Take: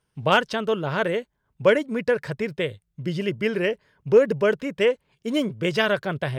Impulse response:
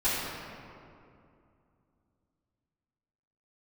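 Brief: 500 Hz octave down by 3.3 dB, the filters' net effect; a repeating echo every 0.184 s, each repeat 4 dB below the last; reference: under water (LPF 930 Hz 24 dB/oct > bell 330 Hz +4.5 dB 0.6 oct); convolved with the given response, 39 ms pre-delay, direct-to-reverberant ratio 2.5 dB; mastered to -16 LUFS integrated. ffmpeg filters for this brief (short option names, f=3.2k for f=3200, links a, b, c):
-filter_complex "[0:a]equalizer=f=500:t=o:g=-5.5,aecho=1:1:184|368|552|736|920|1104|1288|1472|1656:0.631|0.398|0.25|0.158|0.0994|0.0626|0.0394|0.0249|0.0157,asplit=2[a][b];[1:a]atrim=start_sample=2205,adelay=39[c];[b][c]afir=irnorm=-1:irlink=0,volume=-14.5dB[d];[a][d]amix=inputs=2:normalize=0,lowpass=f=930:w=0.5412,lowpass=f=930:w=1.3066,equalizer=f=330:t=o:w=0.6:g=4.5,volume=6.5dB"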